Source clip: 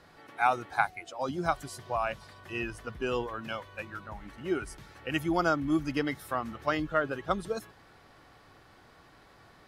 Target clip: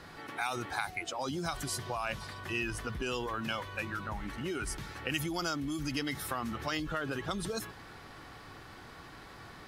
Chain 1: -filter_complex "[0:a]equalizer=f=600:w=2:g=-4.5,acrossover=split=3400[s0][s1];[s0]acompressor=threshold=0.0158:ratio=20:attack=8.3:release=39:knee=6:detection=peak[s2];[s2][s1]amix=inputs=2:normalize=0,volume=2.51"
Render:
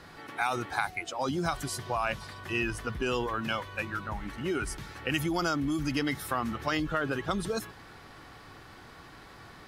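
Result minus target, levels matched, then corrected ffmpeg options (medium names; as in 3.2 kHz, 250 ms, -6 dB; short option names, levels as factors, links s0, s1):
compression: peak gain reduction -6 dB
-filter_complex "[0:a]equalizer=f=600:w=2:g=-4.5,acrossover=split=3400[s0][s1];[s0]acompressor=threshold=0.0075:ratio=20:attack=8.3:release=39:knee=6:detection=peak[s2];[s2][s1]amix=inputs=2:normalize=0,volume=2.51"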